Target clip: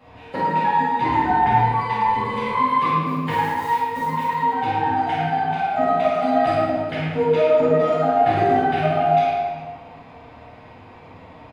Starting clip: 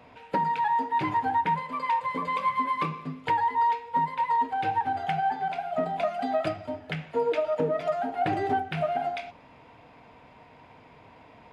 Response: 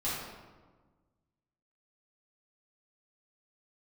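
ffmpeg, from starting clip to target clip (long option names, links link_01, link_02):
-filter_complex "[0:a]asplit=3[link_01][link_02][link_03];[link_01]afade=type=out:start_time=1.06:duration=0.02[link_04];[link_02]afreqshift=-43,afade=type=in:start_time=1.06:duration=0.02,afade=type=out:start_time=2.49:duration=0.02[link_05];[link_03]afade=type=in:start_time=2.49:duration=0.02[link_06];[link_04][link_05][link_06]amix=inputs=3:normalize=0,asettb=1/sr,asplit=3[link_07][link_08][link_09];[link_07]atrim=end=3.024[link_10];[link_08]atrim=start=3.02:end=4.25,asetpts=PTS-STARTPTS,afade=type=in:duration=0.004:curve=qsin,afade=type=out:start_time=1.226:duration=0.004:curve=qsin,acrusher=bits=7:mode=log:mix=0:aa=0.000001[link_11];[link_09]atrim=start=4.246[link_12];[link_10][link_11]acrossfade=duration=0.004:curve1=hsin:curve2=qsin[link_13];[link_13][link_12]acrossfade=duration=0.004:curve1=qsin:curve2=hsin,aecho=1:1:50|112.5|190.6|288.3|410.4:0.631|0.398|0.251|0.158|0.1[link_14];[1:a]atrim=start_sample=2205[link_15];[link_14][link_15]afir=irnorm=-1:irlink=0"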